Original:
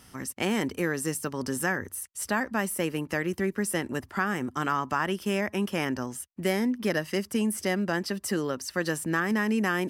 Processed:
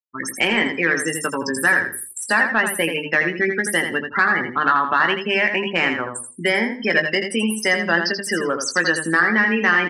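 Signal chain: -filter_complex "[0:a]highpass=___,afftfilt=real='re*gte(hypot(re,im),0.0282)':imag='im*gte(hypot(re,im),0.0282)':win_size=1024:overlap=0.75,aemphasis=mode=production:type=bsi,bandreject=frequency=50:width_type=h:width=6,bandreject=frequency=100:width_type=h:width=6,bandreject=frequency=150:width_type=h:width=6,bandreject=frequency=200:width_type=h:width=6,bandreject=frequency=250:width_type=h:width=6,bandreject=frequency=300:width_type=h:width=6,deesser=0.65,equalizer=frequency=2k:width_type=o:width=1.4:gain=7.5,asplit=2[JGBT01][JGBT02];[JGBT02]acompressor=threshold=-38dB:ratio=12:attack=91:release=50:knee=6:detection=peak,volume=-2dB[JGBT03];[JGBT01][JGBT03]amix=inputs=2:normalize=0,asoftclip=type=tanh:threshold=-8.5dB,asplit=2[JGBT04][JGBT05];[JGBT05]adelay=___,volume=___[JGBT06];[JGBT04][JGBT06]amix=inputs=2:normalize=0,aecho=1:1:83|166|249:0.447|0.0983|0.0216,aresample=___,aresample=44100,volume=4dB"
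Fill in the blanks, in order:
56, 18, -8.5dB, 32000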